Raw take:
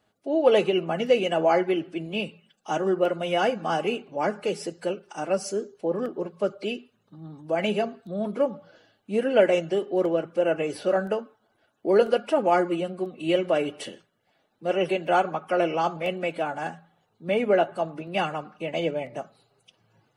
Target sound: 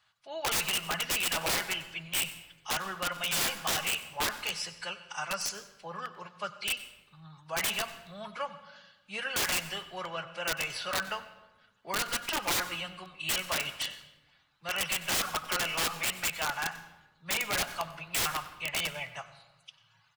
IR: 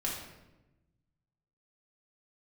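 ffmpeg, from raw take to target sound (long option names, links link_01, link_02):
-filter_complex "[0:a]firequalizer=gain_entry='entry(150,0);entry(260,-23);entry(1000,10);entry(4200,14);entry(9400,4)':delay=0.05:min_phase=1,aeval=exprs='(mod(6.68*val(0)+1,2)-1)/6.68':channel_layout=same,asplit=2[link_01][link_02];[1:a]atrim=start_sample=2205,asetrate=39249,aresample=44100,adelay=93[link_03];[link_02][link_03]afir=irnorm=-1:irlink=0,volume=-18.5dB[link_04];[link_01][link_04]amix=inputs=2:normalize=0,volume=-7dB"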